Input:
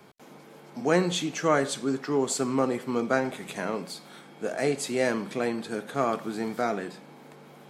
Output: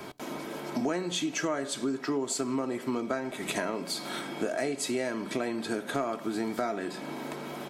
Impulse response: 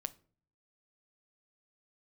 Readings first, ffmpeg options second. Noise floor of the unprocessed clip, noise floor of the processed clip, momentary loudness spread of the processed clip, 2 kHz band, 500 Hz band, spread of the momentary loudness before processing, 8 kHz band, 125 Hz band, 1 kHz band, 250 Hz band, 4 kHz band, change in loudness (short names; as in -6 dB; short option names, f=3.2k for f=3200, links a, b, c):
-51 dBFS, -42 dBFS, 7 LU, -3.5 dB, -5.0 dB, 11 LU, -1.0 dB, -6.5 dB, -4.5 dB, -2.0 dB, 0.0 dB, -4.0 dB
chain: -filter_complex "[0:a]aecho=1:1:3.1:0.43,acompressor=threshold=-39dB:ratio=10,asplit=2[a][b];[1:a]atrim=start_sample=2205[c];[b][c]afir=irnorm=-1:irlink=0,volume=-5dB[d];[a][d]amix=inputs=2:normalize=0,volume=8dB"